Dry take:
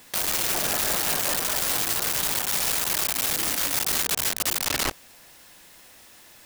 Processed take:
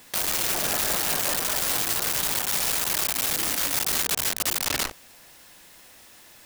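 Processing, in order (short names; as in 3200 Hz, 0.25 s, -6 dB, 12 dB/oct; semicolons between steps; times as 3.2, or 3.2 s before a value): core saturation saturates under 130 Hz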